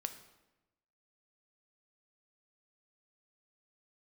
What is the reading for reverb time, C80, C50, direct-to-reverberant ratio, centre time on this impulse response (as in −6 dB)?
1.0 s, 13.0 dB, 11.0 dB, 7.5 dB, 12 ms